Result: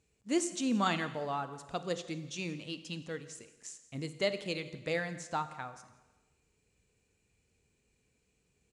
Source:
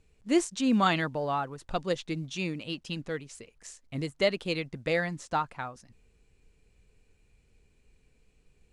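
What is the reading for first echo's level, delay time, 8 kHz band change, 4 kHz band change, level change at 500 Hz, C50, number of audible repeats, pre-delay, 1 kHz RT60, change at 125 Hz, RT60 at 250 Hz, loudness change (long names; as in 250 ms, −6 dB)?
−21.5 dB, 171 ms, 0.0 dB, −4.5 dB, −5.5 dB, 12.5 dB, 1, 27 ms, 1.2 s, −6.0 dB, 1.3 s, −5.5 dB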